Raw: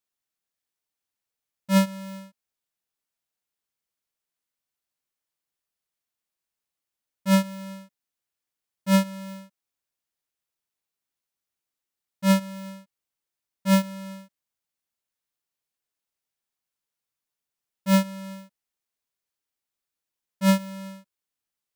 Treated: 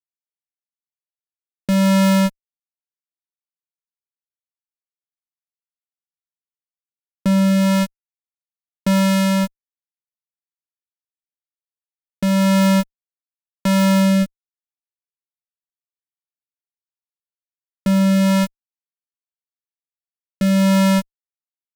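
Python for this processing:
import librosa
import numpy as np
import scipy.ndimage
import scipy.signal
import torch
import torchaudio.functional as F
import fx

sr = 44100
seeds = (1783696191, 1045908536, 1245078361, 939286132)

y = fx.fuzz(x, sr, gain_db=49.0, gate_db=-53.0)
y = fx.rotary(y, sr, hz=0.85)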